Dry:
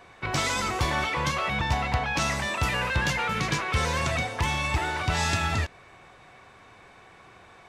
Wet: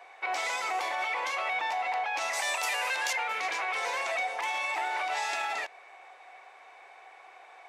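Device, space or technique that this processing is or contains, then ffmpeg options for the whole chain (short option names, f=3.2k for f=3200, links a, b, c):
laptop speaker: -filter_complex "[0:a]highpass=f=430:w=0.5412,highpass=f=430:w=1.3066,equalizer=f=770:t=o:w=0.43:g=11,equalizer=f=2.2k:t=o:w=0.52:g=7,alimiter=limit=-18dB:level=0:latency=1:release=42,asettb=1/sr,asplit=3[a][b][c];[a]atrim=end=2.334[d];[b]atrim=start=2.33:end=3.13,asetpts=PTS-STARTPTS,afade=t=in:d=0.004:c=qsin,afade=t=out:st=0.796:d=0.004:c=qsin,bass=f=250:g=-10,treble=f=4k:g=12[e];[c]atrim=start=3.126[f];[d][e]acrossfade=d=0.004:c1=hsin:c2=qsin[g];[g][f]acrossfade=d=0.004:c1=qsin:c2=hsin,volume=-5dB"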